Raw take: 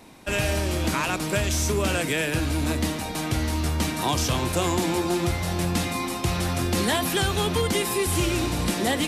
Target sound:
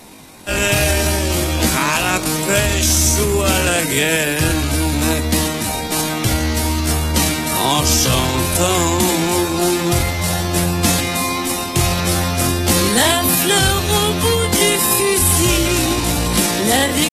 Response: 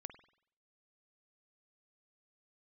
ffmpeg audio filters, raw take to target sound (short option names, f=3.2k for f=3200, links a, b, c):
-filter_complex "[0:a]highshelf=f=4.8k:g=9,atempo=0.53,asplit=2[a][b];[1:a]atrim=start_sample=2205[c];[b][c]afir=irnorm=-1:irlink=0,volume=-8dB[d];[a][d]amix=inputs=2:normalize=0,aresample=32000,aresample=44100,volume=5dB" -ar 48000 -c:a aac -b:a 48k